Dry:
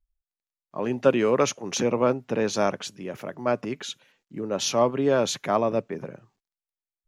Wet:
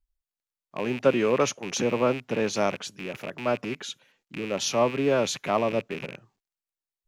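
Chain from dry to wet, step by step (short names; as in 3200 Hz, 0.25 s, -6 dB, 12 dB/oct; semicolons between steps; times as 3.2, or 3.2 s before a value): rattling part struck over -41 dBFS, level -24 dBFS; gain -1.5 dB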